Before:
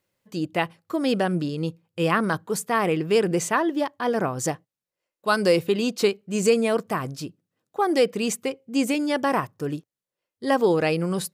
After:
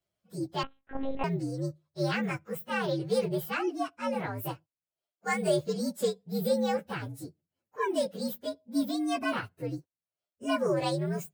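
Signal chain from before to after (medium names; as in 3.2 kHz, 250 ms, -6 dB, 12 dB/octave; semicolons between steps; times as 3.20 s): frequency axis rescaled in octaves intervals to 121%; 0.63–1.24 s: monotone LPC vocoder at 8 kHz 270 Hz; trim -5 dB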